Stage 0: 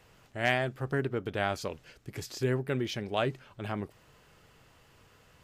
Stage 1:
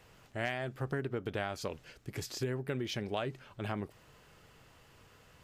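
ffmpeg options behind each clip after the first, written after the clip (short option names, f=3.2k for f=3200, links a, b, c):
-af "acompressor=threshold=-31dB:ratio=10"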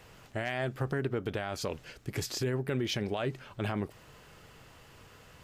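-af "alimiter=level_in=3.5dB:limit=-24dB:level=0:latency=1:release=21,volume=-3.5dB,volume=5.5dB"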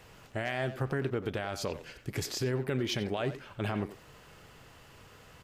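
-filter_complex "[0:a]asplit=2[a][b];[b]adelay=90,highpass=300,lowpass=3.4k,asoftclip=type=hard:threshold=-31.5dB,volume=-9dB[c];[a][c]amix=inputs=2:normalize=0"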